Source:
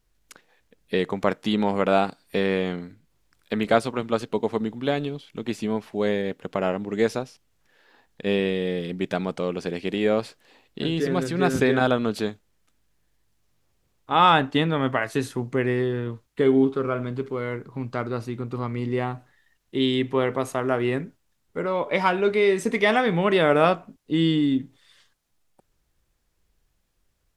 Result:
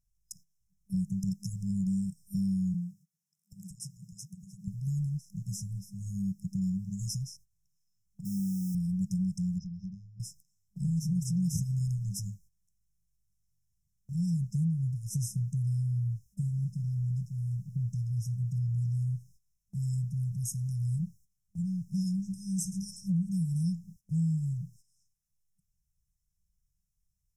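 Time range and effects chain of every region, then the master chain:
0:02.74–0:04.68: Chebyshev high-pass filter 160 Hz, order 4 + downward compressor 5 to 1, threshold −26 dBFS
0:08.25–0:08.75: high-pass filter 260 Hz 6 dB per octave + bit-depth reduction 8 bits, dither none
0:09.58–0:10.20: inverse Chebyshev low-pass filter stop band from 8,200 Hz + downward compressor 4 to 1, threshold −33 dBFS
whole clip: brick-wall band-stop 200–5,100 Hz; noise gate −59 dBFS, range −13 dB; downward compressor 3 to 1, threshold −33 dBFS; level +5 dB

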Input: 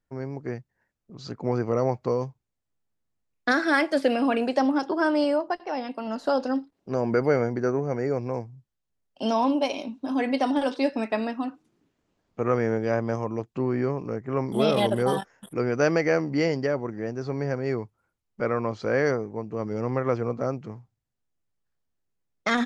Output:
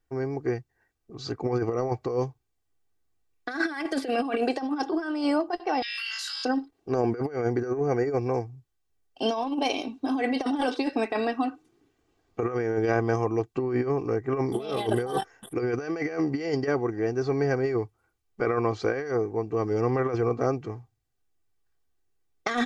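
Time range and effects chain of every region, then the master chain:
0:05.82–0:06.45: Butterworth high-pass 1,900 Hz + flutter between parallel walls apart 3.1 metres, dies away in 0.47 s + envelope flattener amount 100%
whole clip: comb filter 2.6 ms, depth 64%; compressor whose output falls as the input rises −25 dBFS, ratio −0.5

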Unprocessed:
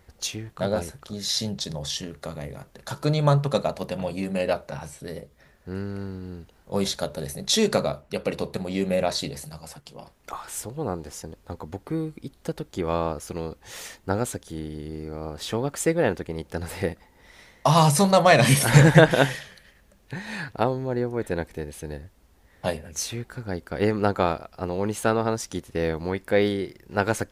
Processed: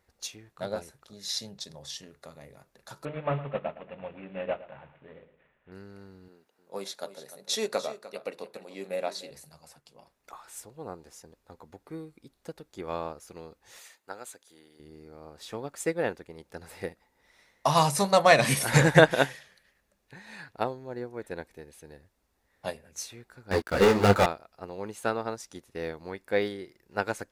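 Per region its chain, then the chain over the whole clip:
0:03.05–0:05.72: variable-slope delta modulation 16 kbit/s + mains-hum notches 50/100/150/200/250/300/350/400/450 Hz + repeating echo 112 ms, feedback 36%, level −12 dB
0:06.28–0:09.31: high-pass filter 280 Hz + parametric band 5,400 Hz −2.5 dB 2.5 octaves + single-tap delay 300 ms −11 dB
0:13.79–0:14.80: high-pass filter 900 Hz 6 dB per octave + notch filter 5,500 Hz, Q 10
0:23.51–0:24.26: leveller curve on the samples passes 5 + micro pitch shift up and down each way 29 cents
whole clip: low-shelf EQ 240 Hz −8.5 dB; notch filter 3,100 Hz, Q 17; expander for the loud parts 1.5 to 1, over −34 dBFS

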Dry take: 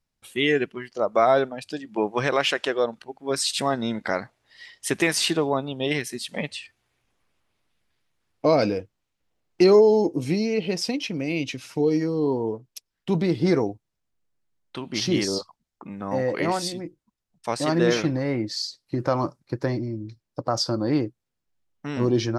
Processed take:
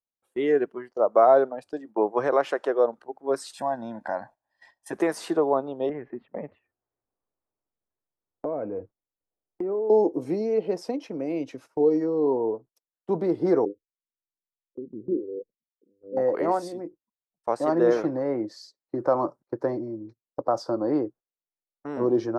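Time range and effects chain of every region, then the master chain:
0:03.54–0:04.93: comb filter 1.2 ms, depth 91% + downward compressor 1.5 to 1, threshold −34 dBFS
0:05.89–0:09.90: Butterworth low-pass 2,500 Hz + low-shelf EQ 240 Hz +11.5 dB + downward compressor, threshold −27 dBFS
0:13.65–0:16.17: Butterworth low-pass 510 Hz 96 dB per octave + phaser with staggered stages 1.4 Hz
whole clip: three-way crossover with the lows and the highs turned down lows −19 dB, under 330 Hz, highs −17 dB, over 2,000 Hz; noise gate −48 dBFS, range −16 dB; parametric band 2,500 Hz −14.5 dB 1.7 octaves; level +5 dB

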